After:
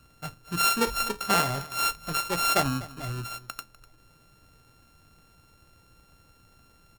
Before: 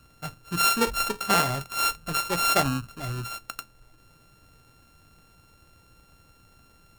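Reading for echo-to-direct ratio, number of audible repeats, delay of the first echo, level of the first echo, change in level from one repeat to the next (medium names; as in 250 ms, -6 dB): -19.0 dB, 1, 248 ms, -19.0 dB, no regular repeats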